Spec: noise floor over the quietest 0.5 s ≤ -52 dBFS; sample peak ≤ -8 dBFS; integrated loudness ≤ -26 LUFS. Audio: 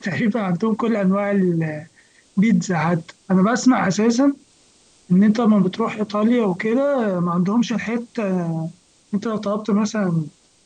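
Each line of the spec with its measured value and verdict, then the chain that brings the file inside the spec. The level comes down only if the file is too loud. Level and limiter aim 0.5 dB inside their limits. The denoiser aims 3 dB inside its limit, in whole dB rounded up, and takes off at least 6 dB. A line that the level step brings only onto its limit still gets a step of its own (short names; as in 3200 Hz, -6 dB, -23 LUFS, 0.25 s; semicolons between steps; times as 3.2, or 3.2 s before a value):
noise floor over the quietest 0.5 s -55 dBFS: OK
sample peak -6.0 dBFS: fail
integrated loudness -20.0 LUFS: fail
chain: gain -6.5 dB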